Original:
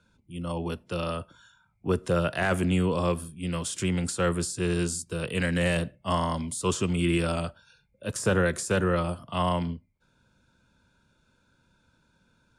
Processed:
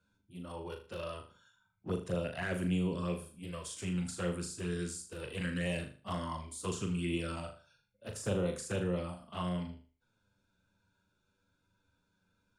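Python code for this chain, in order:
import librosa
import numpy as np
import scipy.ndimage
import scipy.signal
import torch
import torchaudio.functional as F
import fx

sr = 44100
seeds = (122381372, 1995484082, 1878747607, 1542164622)

y = fx.env_flanger(x, sr, rest_ms=10.7, full_db=-20.0)
y = fx.room_flutter(y, sr, wall_m=6.7, rt60_s=0.38)
y = y * librosa.db_to_amplitude(-8.5)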